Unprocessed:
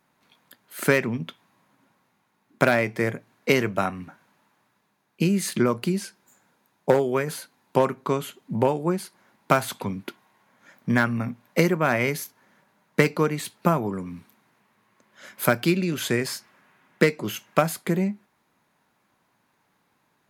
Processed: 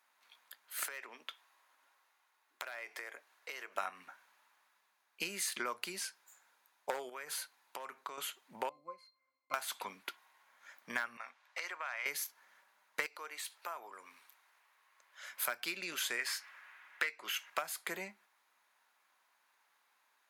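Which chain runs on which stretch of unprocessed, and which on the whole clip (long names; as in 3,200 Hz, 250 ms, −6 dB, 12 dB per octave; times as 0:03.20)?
0:00.85–0:03.76: high-pass filter 300 Hz 24 dB per octave + notch filter 2,300 Hz, Q 30 + downward compressor 10 to 1, threshold −34 dBFS
0:07.09–0:08.18: high-pass filter 63 Hz + downward compressor 8 to 1, threshold −31 dBFS
0:08.69–0:09.54: one scale factor per block 7 bits + high-shelf EQ 4,100 Hz +9 dB + resonances in every octave C, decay 0.19 s
0:11.17–0:12.06: band-pass filter 730–6,300 Hz + downward compressor 5 to 1, threshold −32 dBFS
0:13.06–0:15.29: high-pass filter 420 Hz + downward compressor 2 to 1, threshold −41 dBFS
0:16.19–0:17.50: high-pass filter 170 Hz + parametric band 1,900 Hz +9 dB 1.7 octaves
whole clip: high-pass filter 970 Hz 12 dB per octave; downward compressor 6 to 1, threshold −31 dBFS; level −2.5 dB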